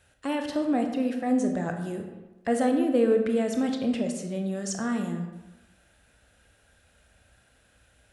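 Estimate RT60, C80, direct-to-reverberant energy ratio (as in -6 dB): 1.1 s, 8.5 dB, 4.0 dB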